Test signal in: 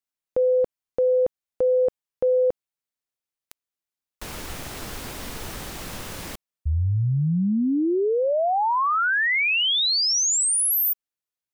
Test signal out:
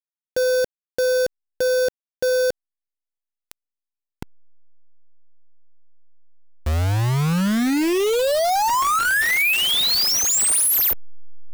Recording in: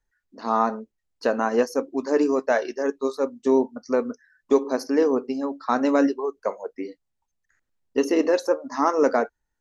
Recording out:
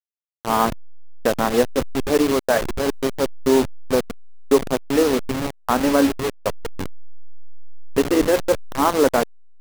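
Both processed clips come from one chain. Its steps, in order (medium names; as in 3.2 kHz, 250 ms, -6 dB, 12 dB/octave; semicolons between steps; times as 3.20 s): send-on-delta sampling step -21.5 dBFS; trim +3.5 dB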